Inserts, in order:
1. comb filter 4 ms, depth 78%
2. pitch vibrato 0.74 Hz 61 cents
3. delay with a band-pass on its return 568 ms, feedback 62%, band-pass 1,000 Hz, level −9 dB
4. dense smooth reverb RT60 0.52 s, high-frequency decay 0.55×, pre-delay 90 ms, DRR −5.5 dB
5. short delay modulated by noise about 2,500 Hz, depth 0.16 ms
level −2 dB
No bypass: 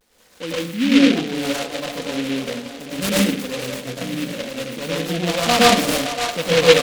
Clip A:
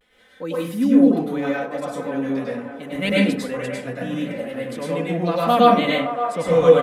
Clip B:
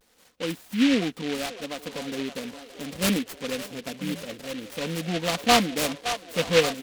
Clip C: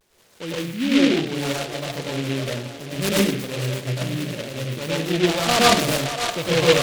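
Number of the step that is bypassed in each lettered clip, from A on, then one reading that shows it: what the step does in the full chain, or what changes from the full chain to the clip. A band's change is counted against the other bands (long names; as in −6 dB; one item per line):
5, 8 kHz band −16.0 dB
4, change in crest factor +3.0 dB
1, 125 Hz band +6.0 dB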